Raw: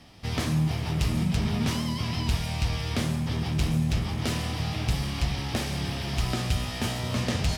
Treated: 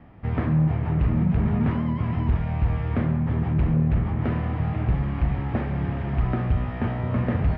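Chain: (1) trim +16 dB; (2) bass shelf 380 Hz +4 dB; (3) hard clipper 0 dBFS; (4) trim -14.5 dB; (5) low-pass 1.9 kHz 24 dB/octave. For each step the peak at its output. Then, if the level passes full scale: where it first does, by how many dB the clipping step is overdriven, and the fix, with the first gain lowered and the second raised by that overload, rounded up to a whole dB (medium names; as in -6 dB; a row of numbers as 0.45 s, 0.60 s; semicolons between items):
+3.0 dBFS, +6.0 dBFS, 0.0 dBFS, -14.5 dBFS, -14.0 dBFS; step 1, 6.0 dB; step 1 +10 dB, step 4 -8.5 dB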